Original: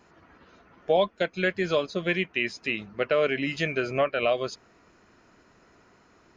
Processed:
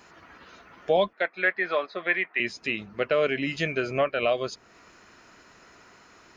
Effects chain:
0:01.13–0:02.40: loudspeaker in its box 460–3,700 Hz, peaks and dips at 470 Hz −3 dB, 770 Hz +5 dB, 1,200 Hz +5 dB, 1,900 Hz +9 dB, 3,000 Hz −9 dB
one half of a high-frequency compander encoder only

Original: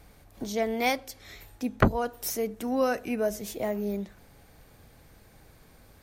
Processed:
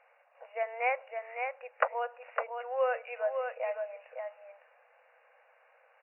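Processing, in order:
linear-phase brick-wall band-pass 470–2,900 Hz
single-tap delay 558 ms −5.5 dB
level −2.5 dB

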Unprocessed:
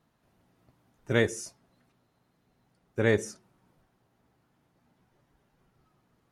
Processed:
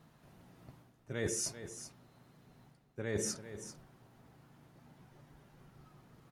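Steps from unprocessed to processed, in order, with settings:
parametric band 150 Hz +6.5 dB 0.42 octaves
reversed playback
downward compressor 16 to 1, threshold −40 dBFS, peak gain reduction 23.5 dB
reversed playback
single-tap delay 391 ms −12 dB
level +7 dB

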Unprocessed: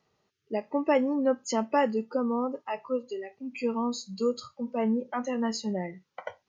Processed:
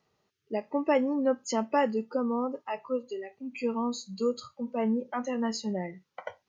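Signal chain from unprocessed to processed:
0:02.78–0:04.79: notch filter 5,200 Hz, Q 9.5
level −1 dB

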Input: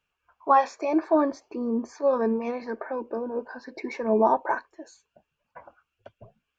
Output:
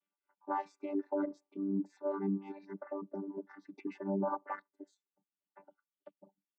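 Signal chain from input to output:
channel vocoder with a chord as carrier bare fifth, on G3
reverb reduction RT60 1.4 s
brickwall limiter −18 dBFS, peak gain reduction 8 dB
level −7.5 dB

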